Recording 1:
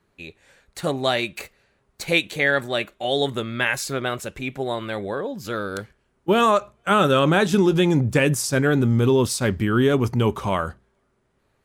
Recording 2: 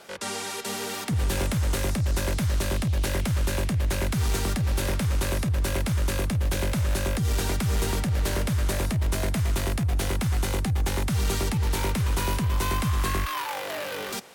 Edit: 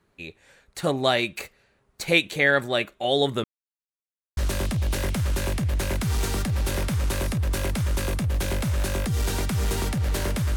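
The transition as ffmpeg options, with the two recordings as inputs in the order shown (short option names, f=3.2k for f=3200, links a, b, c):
-filter_complex "[0:a]apad=whole_dur=10.56,atrim=end=10.56,asplit=2[a][b];[a]atrim=end=3.44,asetpts=PTS-STARTPTS,afade=t=out:st=3.436:d=0.004:c=hsin[c];[b]atrim=start=3.44:end=4.37,asetpts=PTS-STARTPTS,volume=0[d];[1:a]atrim=start=2.48:end=8.67,asetpts=PTS-STARTPTS,afade=t=in:d=0.004:c=hsin[e];[c][d][e]concat=n=3:v=0:a=1"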